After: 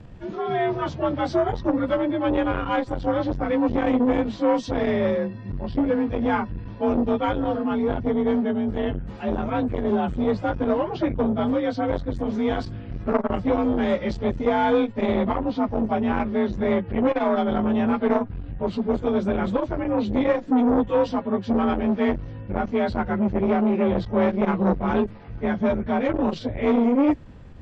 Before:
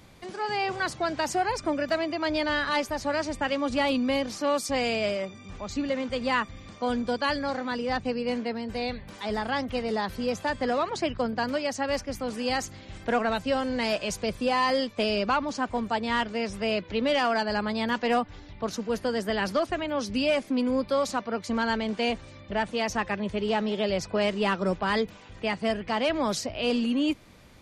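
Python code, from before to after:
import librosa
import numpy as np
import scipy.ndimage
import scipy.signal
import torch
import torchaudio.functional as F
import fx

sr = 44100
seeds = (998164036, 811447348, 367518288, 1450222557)

y = fx.partial_stretch(x, sr, pct=89)
y = fx.tilt_eq(y, sr, slope=-3.5)
y = fx.transformer_sat(y, sr, knee_hz=610.0)
y = y * librosa.db_to_amplitude(4.0)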